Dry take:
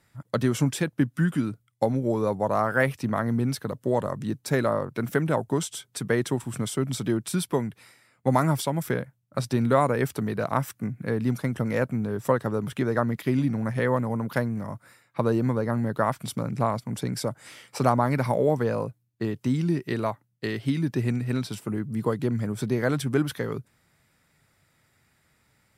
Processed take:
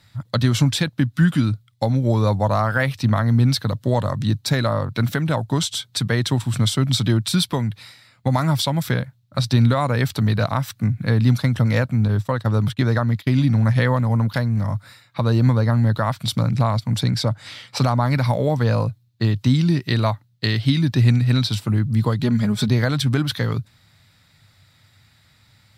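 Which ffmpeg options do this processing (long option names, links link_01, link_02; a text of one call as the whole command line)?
ffmpeg -i in.wav -filter_complex "[0:a]asettb=1/sr,asplit=3[link_01][link_02][link_03];[link_01]atrim=end=12.084[link_04];[link_02]atrim=start=12.08:end=14.34,asetpts=PTS-STARTPTS,afade=type=in:duration=0.004:curve=qsin,afade=type=out:start_time=2.256:duration=0.004:curve=qsin,agate=range=-33dB:threshold=-32dB:ratio=3:release=100:detection=peak[link_05];[link_03]atrim=start=14.336[link_06];[link_04][link_05]acrossfade=duration=0.004:curve1=hsin:curve2=qsin[link_07];[link_07][link_06]acrossfade=duration=0.004:curve1=qsin:curve2=hsin,asettb=1/sr,asplit=3[link_08][link_09][link_10];[link_08]atrim=end=17.104[link_11];[link_09]atrim=start=17.1:end=17.77,asetpts=PTS-STARTPTS,afade=type=in:duration=0.004:curve=qsin,afade=type=out:start_time=0.666:duration=0.004:curve=qsin,highshelf=frequency=6800:gain=-9[link_12];[link_10]atrim=start=17.766[link_13];[link_11][link_12]acrossfade=duration=0.004:curve1=hsin:curve2=qsin[link_14];[link_14][link_13]acrossfade=duration=0.004:curve1=qsin:curve2=hsin,asettb=1/sr,asplit=3[link_15][link_16][link_17];[link_15]atrim=end=22.224[link_18];[link_16]atrim=start=22.22:end=22.68,asetpts=PTS-STARTPTS,afade=type=in:duration=0.004:curve=qsin,afade=type=out:start_time=0.456:duration=0.004:curve=qsin,aecho=1:1:4.8:0.65,atrim=end_sample=20286[link_19];[link_17]atrim=start=22.676[link_20];[link_18][link_19]acrossfade=duration=0.004:curve1=hsin:curve2=qsin[link_21];[link_21][link_20]acrossfade=duration=0.004:curve1=qsin:curve2=hsin,alimiter=limit=-14dB:level=0:latency=1:release=254,equalizer=frequency=100:width_type=o:width=0.67:gain=11,equalizer=frequency=400:width_type=o:width=0.67:gain=-8,equalizer=frequency=4000:width_type=o:width=0.67:gain=12,equalizer=frequency=10000:width_type=o:width=0.67:gain=-4,volume=6.5dB" out.wav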